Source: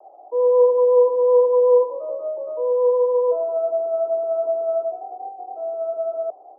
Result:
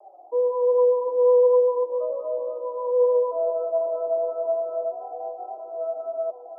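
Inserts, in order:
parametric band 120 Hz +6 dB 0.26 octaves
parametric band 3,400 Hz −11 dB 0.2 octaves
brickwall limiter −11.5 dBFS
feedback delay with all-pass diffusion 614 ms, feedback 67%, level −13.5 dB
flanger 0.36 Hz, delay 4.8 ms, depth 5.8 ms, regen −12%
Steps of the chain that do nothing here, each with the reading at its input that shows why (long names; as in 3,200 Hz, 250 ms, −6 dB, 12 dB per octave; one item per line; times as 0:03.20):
parametric band 120 Hz: nothing at its input below 480 Hz
parametric band 3,400 Hz: nothing at its input above 1,000 Hz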